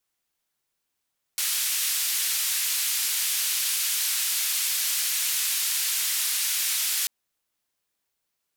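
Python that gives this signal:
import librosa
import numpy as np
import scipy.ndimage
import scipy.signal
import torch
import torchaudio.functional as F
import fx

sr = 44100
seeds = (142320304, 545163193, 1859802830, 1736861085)

y = fx.band_noise(sr, seeds[0], length_s=5.69, low_hz=2200.0, high_hz=15000.0, level_db=-26.0)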